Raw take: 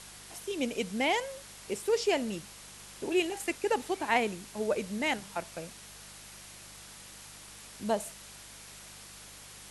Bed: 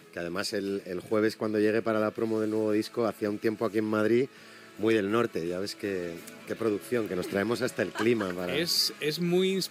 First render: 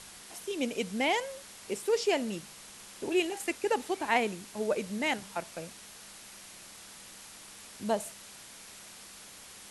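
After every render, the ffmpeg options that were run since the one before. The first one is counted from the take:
-af "bandreject=f=50:t=h:w=4,bandreject=f=100:t=h:w=4,bandreject=f=150:t=h:w=4"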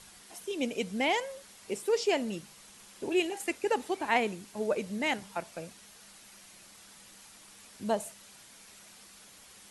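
-af "afftdn=nr=6:nf=-50"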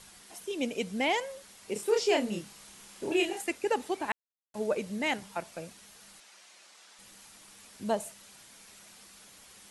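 -filter_complex "[0:a]asettb=1/sr,asplit=3[a][b][c];[a]atrim=end=1.734[d];[b]atrim=start=1.73:end=3.41,asetpts=PTS-STARTPTS,afade=t=in:d=0.004:c=qsin,afade=t=out:st=1.676:d=0.004:c=qsin,asplit=2[e][f];[f]adelay=29,volume=-2.5dB[g];[e][g]amix=inputs=2:normalize=0,atrim=end_sample=74088[h];[c]atrim=start=3.406[i];[d][h]acrossfade=d=0.004:c1=hsin:c2=qsin[j];[j][i]acrossfade=d=0.004:c1=qsin:c2=hsin,asettb=1/sr,asplit=3[k][l][m];[k]atrim=end=6.204[n];[l]atrim=start=6.2:end=6.99,asetpts=PTS-STARTPTS,afade=t=in:d=0.004:c=qsin,afade=t=out:st=0.786:d=0.004:c=qsin,highpass=470,lowpass=7.4k[o];[m]atrim=start=6.986[p];[n][o]acrossfade=d=0.004:c1=hsin:c2=qsin[q];[q][p]acrossfade=d=0.004:c1=qsin:c2=hsin,asplit=3[r][s][t];[r]atrim=end=4.12,asetpts=PTS-STARTPTS,afade=t=out:st=4.116:d=0.004:c=hsin[u];[s]atrim=start=4.12:end=4.54,asetpts=PTS-STARTPTS,volume=0[v];[t]atrim=start=4.54,asetpts=PTS-STARTPTS,afade=t=in:d=0.004:c=hsin[w];[u][v][w]concat=n=3:v=0:a=1"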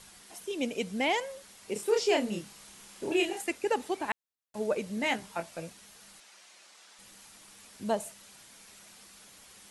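-filter_complex "[0:a]asettb=1/sr,asplit=3[a][b][c];[a]atrim=end=4.954[d];[b]atrim=start=4.95:end=5.7,asetpts=PTS-STARTPTS,afade=t=in:d=0.004:c=qsin,afade=t=out:st=0.746:d=0.004:c=qsin,asplit=2[e][f];[f]adelay=18,volume=-7dB[g];[e][g]amix=inputs=2:normalize=0,atrim=end_sample=33075[h];[c]atrim=start=5.696[i];[d][h]acrossfade=d=0.004:c1=hsin:c2=qsin[j];[j][i]acrossfade=d=0.004:c1=qsin:c2=hsin"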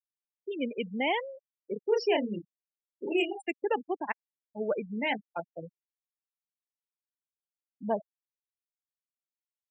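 -af "highpass=f=120:w=0.5412,highpass=f=120:w=1.3066,afftfilt=real='re*gte(hypot(re,im),0.0447)':imag='im*gte(hypot(re,im),0.0447)':win_size=1024:overlap=0.75"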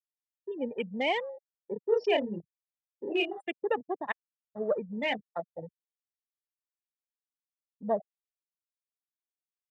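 -af "afwtdn=0.00891,aecho=1:1:1.7:0.32"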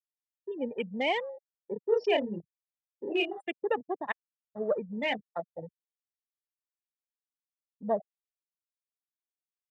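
-af anull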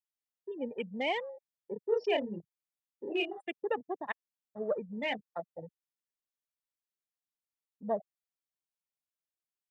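-af "volume=-3.5dB"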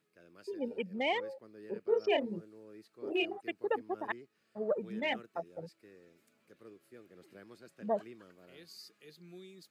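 -filter_complex "[1:a]volume=-26dB[a];[0:a][a]amix=inputs=2:normalize=0"

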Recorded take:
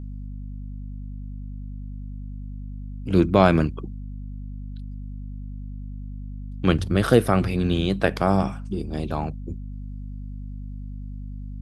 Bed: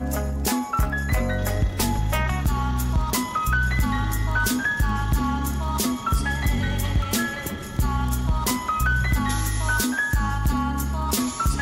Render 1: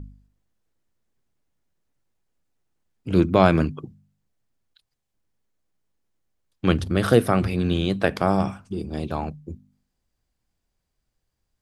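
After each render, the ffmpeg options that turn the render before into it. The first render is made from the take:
-af "bandreject=f=50:t=h:w=4,bandreject=f=100:t=h:w=4,bandreject=f=150:t=h:w=4,bandreject=f=200:t=h:w=4,bandreject=f=250:t=h:w=4"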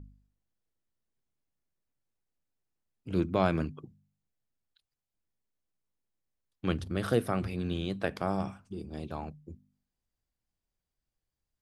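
-af "volume=-10.5dB"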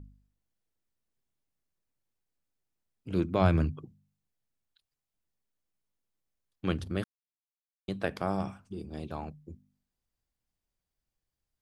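-filter_complex "[0:a]asettb=1/sr,asplit=3[a][b][c];[a]atrim=end=3.414[d];[b]atrim=start=3.41:end=3.84,asetpts=PTS-STARTPTS,afade=t=in:d=0.004:c=qsin,afade=t=out:st=0.426:d=0.004:c=qsin,equalizer=f=91:t=o:w=1.1:g=12[e];[c]atrim=start=3.836[f];[d][e]acrossfade=d=0.004:c1=hsin:c2=qsin[g];[g][f]acrossfade=d=0.004:c1=qsin:c2=hsin,asplit=3[h][i][j];[h]atrim=end=7.04,asetpts=PTS-STARTPTS,afade=t=out:st=7.036:d=0.004:c=hsin[k];[i]atrim=start=7.04:end=7.88,asetpts=PTS-STARTPTS,volume=0[l];[j]atrim=start=7.88,asetpts=PTS-STARTPTS,afade=t=in:d=0.004:c=hsin[m];[k][l][m]concat=n=3:v=0:a=1"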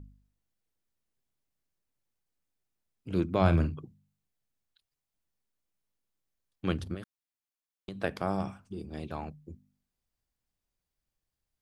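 -filter_complex "[0:a]asettb=1/sr,asplit=3[a][b][c];[a]atrim=end=3.414[d];[b]atrim=start=3.41:end=3.82,asetpts=PTS-STARTPTS,afade=t=in:d=0.004:c=qsin,afade=t=out:st=0.406:d=0.004:c=qsin,asplit=2[e][f];[f]adelay=47,volume=-11dB[g];[e][g]amix=inputs=2:normalize=0,atrim=end_sample=18081[h];[c]atrim=start=3.816[i];[d][h]acrossfade=d=0.004:c1=hsin:c2=qsin[j];[j][i]acrossfade=d=0.004:c1=qsin:c2=hsin,asettb=1/sr,asplit=3[k][l][m];[k]atrim=end=6.944[n];[l]atrim=start=6.94:end=8.03,asetpts=PTS-STARTPTS,afade=t=in:d=0.004:c=qsin,afade=t=out:st=1.086:d=0.004:c=qsin,acompressor=threshold=-35dB:ratio=10:attack=3.2:release=140:knee=1:detection=peak[o];[m]atrim=start=8.026[p];[n][o]acrossfade=d=0.004:c1=hsin:c2=qsin[q];[q][p]acrossfade=d=0.004:c1=qsin:c2=hsin,asettb=1/sr,asplit=3[r][s][t];[r]atrim=end=8.884[u];[s]atrim=start=8.88:end=9.28,asetpts=PTS-STARTPTS,afade=t=in:d=0.004:c=qsin,afade=t=out:st=0.396:d=0.004:c=qsin,equalizer=f=2k:w=1.5:g=4.5[v];[t]atrim=start=9.276[w];[u][v]acrossfade=d=0.004:c1=hsin:c2=qsin[x];[x][w]acrossfade=d=0.004:c1=qsin:c2=hsin"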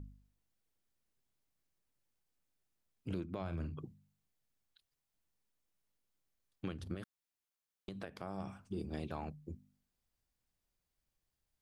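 -af "acompressor=threshold=-33dB:ratio=6,alimiter=level_in=5dB:limit=-24dB:level=0:latency=1:release=384,volume=-5dB"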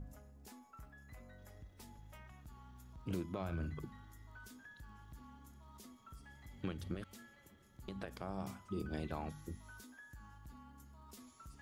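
-filter_complex "[1:a]volume=-33dB[a];[0:a][a]amix=inputs=2:normalize=0"

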